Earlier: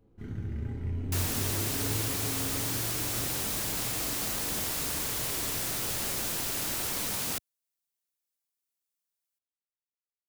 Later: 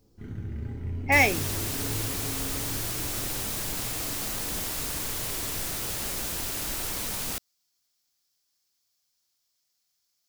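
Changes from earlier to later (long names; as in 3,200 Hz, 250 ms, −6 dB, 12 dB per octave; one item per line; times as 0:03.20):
speech: unmuted
second sound: remove high-pass filter 83 Hz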